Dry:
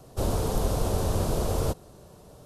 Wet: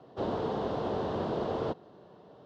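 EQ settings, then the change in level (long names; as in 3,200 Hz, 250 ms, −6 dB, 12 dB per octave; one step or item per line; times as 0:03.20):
loudspeaker in its box 220–3,300 Hz, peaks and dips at 560 Hz −3 dB, 1,300 Hz −3 dB, 2,400 Hz −9 dB
0.0 dB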